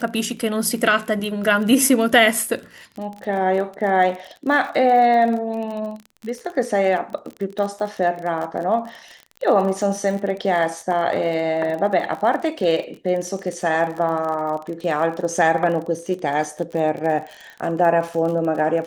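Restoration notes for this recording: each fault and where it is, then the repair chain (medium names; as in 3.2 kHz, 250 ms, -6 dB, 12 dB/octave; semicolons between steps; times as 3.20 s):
crackle 37 per s -28 dBFS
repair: de-click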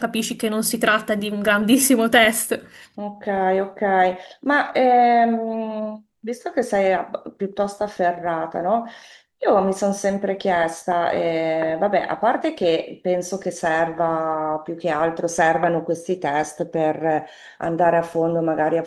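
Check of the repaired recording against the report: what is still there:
nothing left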